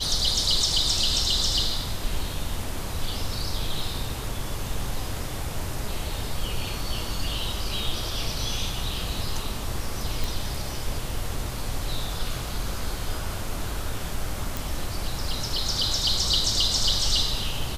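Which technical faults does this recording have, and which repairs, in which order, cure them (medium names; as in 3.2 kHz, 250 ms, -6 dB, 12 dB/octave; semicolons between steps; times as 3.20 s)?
10.24 s: pop
14.57 s: pop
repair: de-click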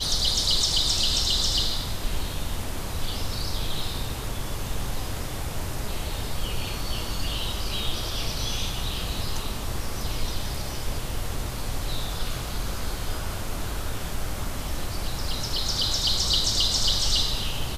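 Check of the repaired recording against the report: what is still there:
nothing left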